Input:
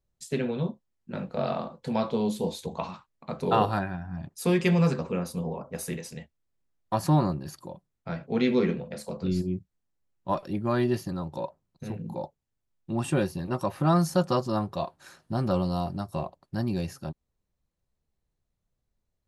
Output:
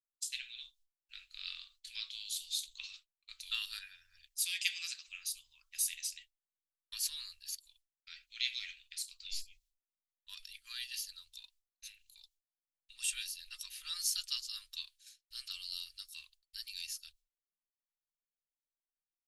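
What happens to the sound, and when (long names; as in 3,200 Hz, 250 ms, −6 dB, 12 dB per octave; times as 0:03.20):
0:04.35–0:05.07: Butterworth high-pass 760 Hz
whole clip: downward expander −42 dBFS; inverse Chebyshev band-stop filter 110–770 Hz, stop band 70 dB; level +5.5 dB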